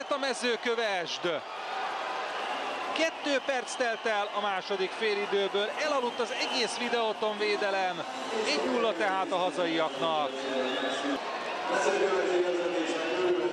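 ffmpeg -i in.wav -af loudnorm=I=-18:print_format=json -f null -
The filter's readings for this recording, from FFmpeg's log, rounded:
"input_i" : "-29.6",
"input_tp" : "-15.4",
"input_lra" : "2.3",
"input_thresh" : "-39.6",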